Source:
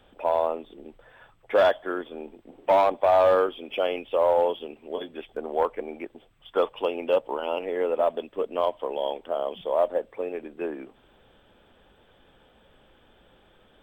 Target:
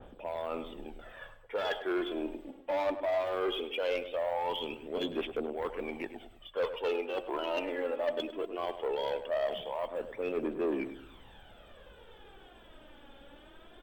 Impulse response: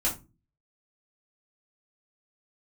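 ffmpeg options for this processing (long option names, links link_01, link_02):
-filter_complex "[0:a]areverse,acompressor=threshold=-30dB:ratio=16,areverse,aphaser=in_gain=1:out_gain=1:delay=3.7:decay=0.59:speed=0.19:type=triangular,asoftclip=type=tanh:threshold=-27dB,asplit=2[link_01][link_02];[link_02]adelay=102,lowpass=frequency=1900:poles=1,volume=-10dB,asplit=2[link_03][link_04];[link_04]adelay=102,lowpass=frequency=1900:poles=1,volume=0.39,asplit=2[link_05][link_06];[link_06]adelay=102,lowpass=frequency=1900:poles=1,volume=0.39,asplit=2[link_07][link_08];[link_08]adelay=102,lowpass=frequency=1900:poles=1,volume=0.39[link_09];[link_01][link_03][link_05][link_07][link_09]amix=inputs=5:normalize=0,adynamicequalizer=threshold=0.00447:dfrequency=1700:dqfactor=0.7:tfrequency=1700:tqfactor=0.7:attack=5:release=100:ratio=0.375:range=2:mode=boostabove:tftype=highshelf,volume=1.5dB"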